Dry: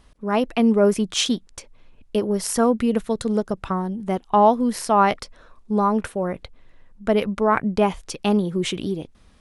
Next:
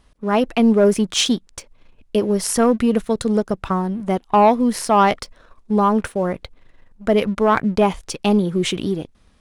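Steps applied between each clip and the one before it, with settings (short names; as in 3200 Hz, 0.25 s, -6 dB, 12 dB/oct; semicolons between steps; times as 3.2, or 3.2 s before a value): sample leveller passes 1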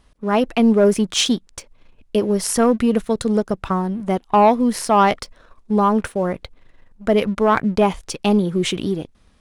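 nothing audible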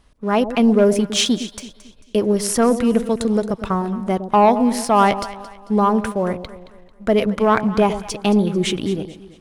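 echo with dull and thin repeats by turns 0.111 s, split 830 Hz, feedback 60%, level -10.5 dB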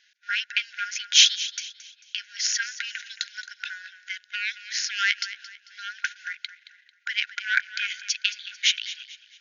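brick-wall FIR band-pass 1400–6900 Hz; gain +4.5 dB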